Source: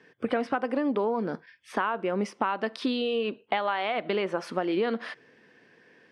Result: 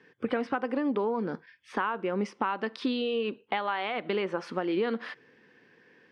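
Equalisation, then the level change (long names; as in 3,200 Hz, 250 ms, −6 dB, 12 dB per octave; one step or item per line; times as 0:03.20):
high-frequency loss of the air 61 metres
parametric band 650 Hz −8.5 dB 0.23 octaves
−1.0 dB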